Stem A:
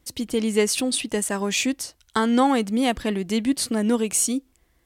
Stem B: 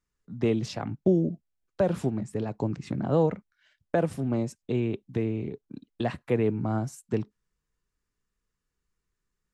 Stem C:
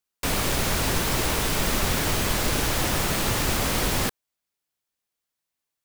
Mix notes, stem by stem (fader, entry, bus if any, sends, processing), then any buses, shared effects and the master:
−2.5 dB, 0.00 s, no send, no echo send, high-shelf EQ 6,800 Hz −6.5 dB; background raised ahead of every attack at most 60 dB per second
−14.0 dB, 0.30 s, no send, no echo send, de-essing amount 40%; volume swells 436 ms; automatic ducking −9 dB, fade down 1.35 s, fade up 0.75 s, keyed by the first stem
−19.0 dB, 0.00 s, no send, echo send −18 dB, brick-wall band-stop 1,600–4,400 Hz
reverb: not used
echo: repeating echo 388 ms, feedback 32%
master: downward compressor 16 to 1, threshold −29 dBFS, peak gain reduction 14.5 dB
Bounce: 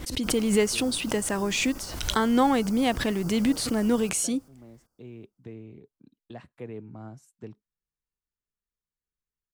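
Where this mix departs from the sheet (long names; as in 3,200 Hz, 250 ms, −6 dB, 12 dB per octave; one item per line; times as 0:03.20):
stem B: missing volume swells 436 ms
master: missing downward compressor 16 to 1, threshold −29 dBFS, peak gain reduction 14.5 dB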